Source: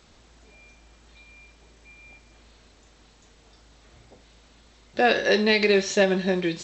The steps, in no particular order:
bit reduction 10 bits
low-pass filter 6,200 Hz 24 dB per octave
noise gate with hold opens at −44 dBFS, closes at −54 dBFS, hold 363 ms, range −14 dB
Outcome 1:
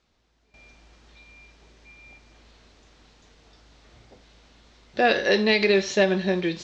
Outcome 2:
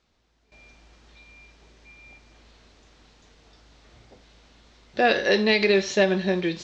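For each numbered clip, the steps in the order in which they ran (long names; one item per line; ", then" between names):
bit reduction, then noise gate with hold, then low-pass filter
bit reduction, then low-pass filter, then noise gate with hold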